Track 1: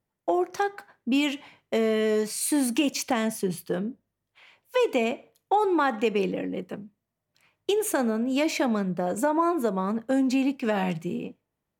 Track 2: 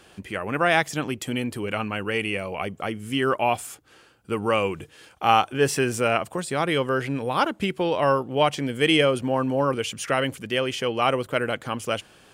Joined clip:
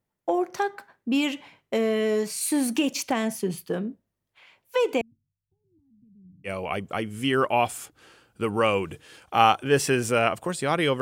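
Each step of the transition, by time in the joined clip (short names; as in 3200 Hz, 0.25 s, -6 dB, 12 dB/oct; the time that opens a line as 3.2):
track 1
5.01–6.5 inverse Chebyshev low-pass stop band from 510 Hz, stop band 70 dB
6.47 switch to track 2 from 2.36 s, crossfade 0.06 s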